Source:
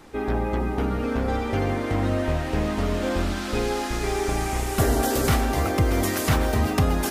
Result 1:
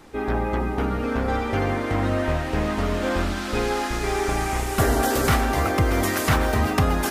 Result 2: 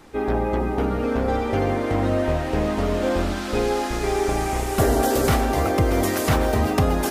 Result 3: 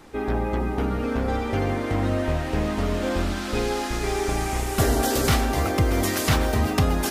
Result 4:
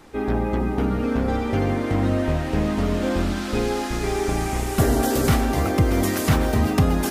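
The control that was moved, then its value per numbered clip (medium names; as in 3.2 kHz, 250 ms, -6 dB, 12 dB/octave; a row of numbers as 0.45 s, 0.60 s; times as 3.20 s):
dynamic bell, frequency: 1.4 kHz, 550 Hz, 4.3 kHz, 190 Hz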